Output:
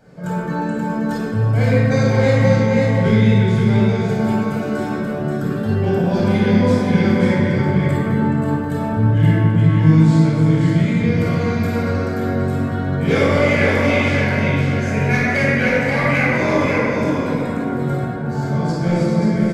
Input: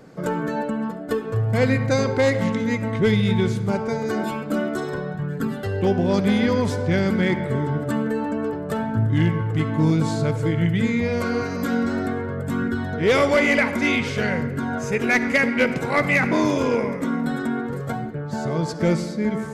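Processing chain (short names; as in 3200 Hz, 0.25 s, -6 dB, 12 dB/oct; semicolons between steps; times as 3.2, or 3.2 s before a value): 0.58–1.17 bell 5800 Hz +10.5 dB 0.69 oct; echo 0.531 s -4.5 dB; reverb RT60 2.0 s, pre-delay 19 ms, DRR -7 dB; gain -8.5 dB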